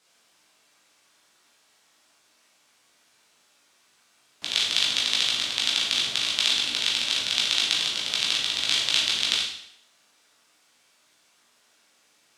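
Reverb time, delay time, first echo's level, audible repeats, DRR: 0.70 s, none, none, none, -5.0 dB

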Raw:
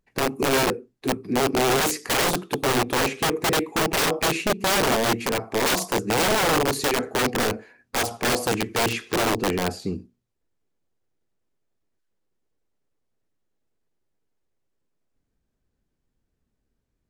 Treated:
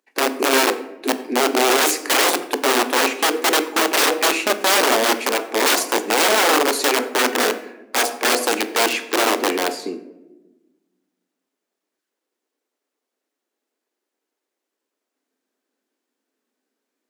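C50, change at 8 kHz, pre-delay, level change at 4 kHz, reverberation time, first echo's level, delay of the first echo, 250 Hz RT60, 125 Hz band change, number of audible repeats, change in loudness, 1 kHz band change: 14.0 dB, +6.0 dB, 18 ms, +6.0 dB, 1.1 s, none, none, 1.9 s, under -20 dB, none, +5.0 dB, +5.0 dB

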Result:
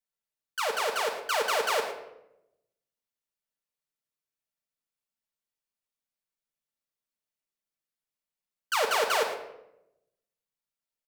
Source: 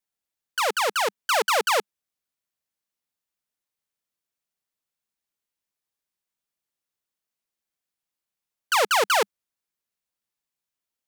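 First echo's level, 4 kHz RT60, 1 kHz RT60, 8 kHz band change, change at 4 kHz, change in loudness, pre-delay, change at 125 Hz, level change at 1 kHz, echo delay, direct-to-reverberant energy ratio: -13.5 dB, 0.55 s, 0.75 s, -6.5 dB, -5.5 dB, -5.5 dB, 4 ms, n/a, -5.5 dB, 0.113 s, -0.5 dB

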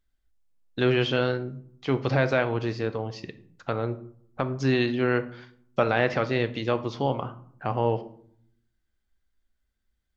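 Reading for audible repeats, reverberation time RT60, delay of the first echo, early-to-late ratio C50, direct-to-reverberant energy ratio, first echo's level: none, 0.60 s, none, 15.0 dB, 9.5 dB, none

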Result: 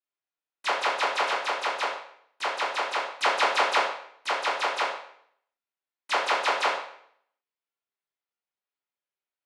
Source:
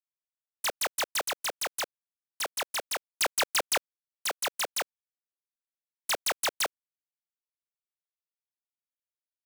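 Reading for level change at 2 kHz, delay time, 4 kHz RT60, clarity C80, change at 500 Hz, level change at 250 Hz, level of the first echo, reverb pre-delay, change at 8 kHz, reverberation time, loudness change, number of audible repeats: +6.0 dB, none, 0.60 s, 7.0 dB, +6.5 dB, +4.5 dB, none, 7 ms, -9.5 dB, 0.65 s, +4.0 dB, none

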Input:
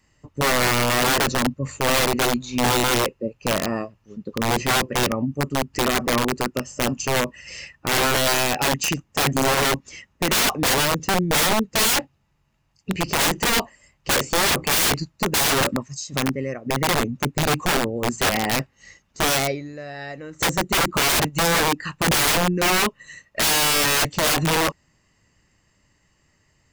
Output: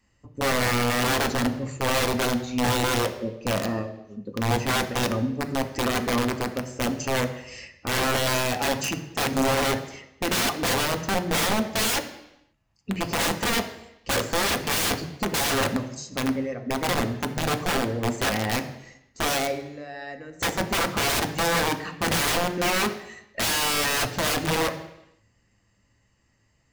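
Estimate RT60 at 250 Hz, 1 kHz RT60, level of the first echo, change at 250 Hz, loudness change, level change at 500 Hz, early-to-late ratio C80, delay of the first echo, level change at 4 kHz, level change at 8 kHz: 0.85 s, 0.85 s, none, -2.0 dB, -4.5 dB, -3.0 dB, 13.5 dB, none, -5.0 dB, -6.0 dB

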